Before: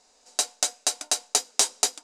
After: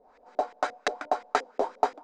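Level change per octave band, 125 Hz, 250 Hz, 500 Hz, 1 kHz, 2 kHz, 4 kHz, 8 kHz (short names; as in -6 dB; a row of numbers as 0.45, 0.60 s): n/a, +5.5 dB, +8.0 dB, +8.0 dB, +2.0 dB, -16.0 dB, -27.0 dB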